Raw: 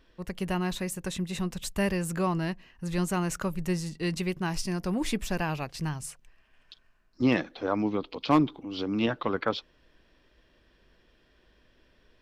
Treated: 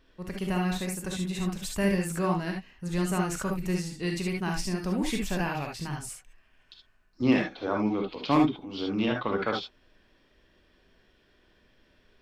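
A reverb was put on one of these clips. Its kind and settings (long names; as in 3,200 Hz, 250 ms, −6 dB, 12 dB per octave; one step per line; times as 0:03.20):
reverb whose tail is shaped and stops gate 90 ms rising, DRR 0.5 dB
level −2 dB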